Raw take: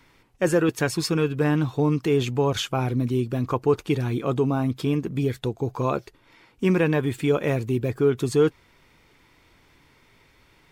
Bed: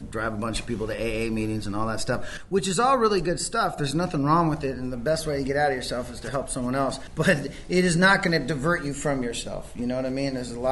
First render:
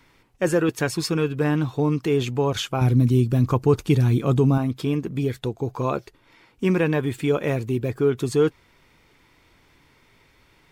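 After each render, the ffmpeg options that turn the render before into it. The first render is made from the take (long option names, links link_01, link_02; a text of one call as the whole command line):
ffmpeg -i in.wav -filter_complex "[0:a]asettb=1/sr,asplit=3[link_01][link_02][link_03];[link_01]atrim=end=2.814[link_04];[link_02]atrim=start=2.81:end=4.58,asetpts=PTS-STARTPTS,afade=type=in:duration=0.004:curve=qsin,afade=type=out:start_time=1.766:duration=0.004:curve=qsin,bass=frequency=250:gain=9,treble=frequency=4000:gain=6[link_05];[link_03]atrim=start=4.576[link_06];[link_04][link_05]acrossfade=duration=0.004:curve1=hsin:curve2=qsin[link_07];[link_07][link_06]acrossfade=duration=0.004:curve1=qsin:curve2=hsin" out.wav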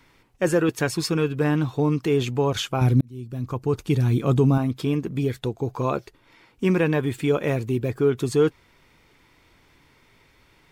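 ffmpeg -i in.wav -filter_complex "[0:a]asplit=2[link_01][link_02];[link_01]atrim=end=3.01,asetpts=PTS-STARTPTS,afade=type=out:start_time=3.006:duration=0.004:curve=hsin[link_03];[link_02]atrim=start=3.01,asetpts=PTS-STARTPTS,afade=type=in:duration=1.29[link_04];[link_03][link_04]concat=n=2:v=0:a=1" out.wav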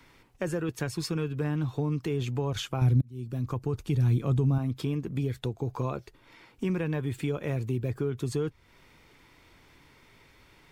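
ffmpeg -i in.wav -filter_complex "[0:a]acrossover=split=130[link_01][link_02];[link_02]acompressor=threshold=-33dB:ratio=3[link_03];[link_01][link_03]amix=inputs=2:normalize=0" out.wav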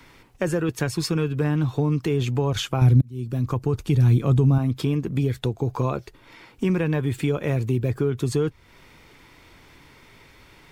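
ffmpeg -i in.wav -af "volume=7dB" out.wav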